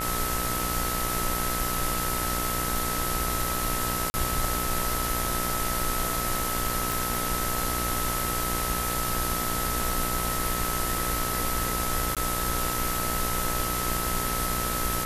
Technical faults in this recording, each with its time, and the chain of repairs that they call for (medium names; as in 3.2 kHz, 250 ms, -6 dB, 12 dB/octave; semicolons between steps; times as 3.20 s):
buzz 60 Hz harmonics 35 -33 dBFS
whine 1.3 kHz -32 dBFS
4.10–4.14 s: dropout 40 ms
6.92 s: pop
12.15–12.17 s: dropout 17 ms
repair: de-click; de-hum 60 Hz, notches 35; band-stop 1.3 kHz, Q 30; interpolate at 4.10 s, 40 ms; interpolate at 12.15 s, 17 ms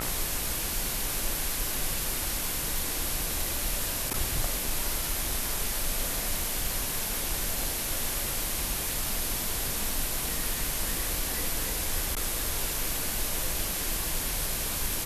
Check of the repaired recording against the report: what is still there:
nothing left